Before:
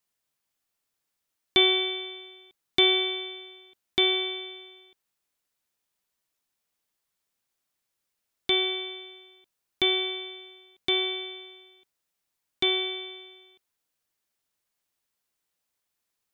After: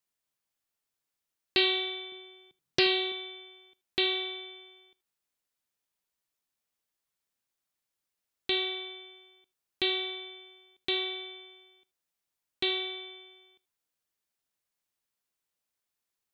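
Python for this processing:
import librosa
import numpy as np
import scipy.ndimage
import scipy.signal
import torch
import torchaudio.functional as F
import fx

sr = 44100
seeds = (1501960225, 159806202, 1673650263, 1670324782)

y = fx.peak_eq(x, sr, hz=140.0, db=13.5, octaves=1.6, at=(2.12, 3.12))
y = y + 10.0 ** (-22.0 / 20.0) * np.pad(y, (int(79 * sr / 1000.0), 0))[:len(y)]
y = fx.doppler_dist(y, sr, depth_ms=0.44)
y = y * librosa.db_to_amplitude(-5.0)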